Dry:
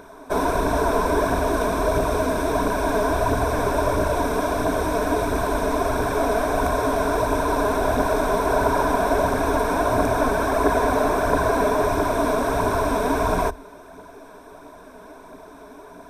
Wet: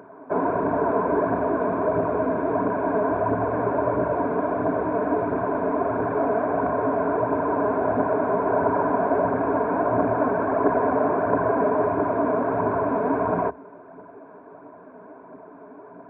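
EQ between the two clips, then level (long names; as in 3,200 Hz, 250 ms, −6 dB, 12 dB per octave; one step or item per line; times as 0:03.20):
Gaussian smoothing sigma 5.1 samples
high-pass filter 110 Hz 24 dB per octave
0.0 dB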